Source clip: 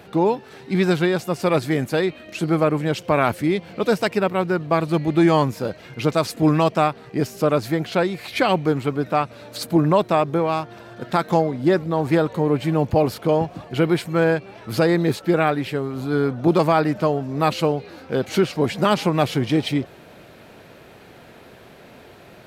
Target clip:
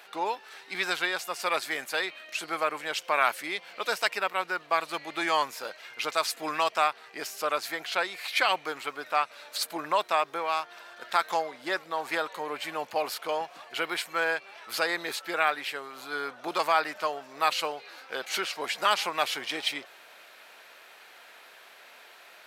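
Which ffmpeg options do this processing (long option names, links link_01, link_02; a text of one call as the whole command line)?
ffmpeg -i in.wav -af "highpass=1100" out.wav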